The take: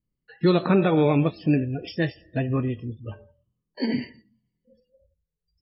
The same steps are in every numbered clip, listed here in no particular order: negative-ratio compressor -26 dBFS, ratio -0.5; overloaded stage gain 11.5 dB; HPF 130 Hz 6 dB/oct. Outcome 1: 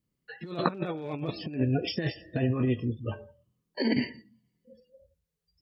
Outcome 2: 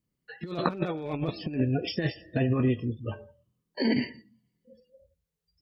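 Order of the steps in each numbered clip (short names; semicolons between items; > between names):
overloaded stage > negative-ratio compressor > HPF; HPF > overloaded stage > negative-ratio compressor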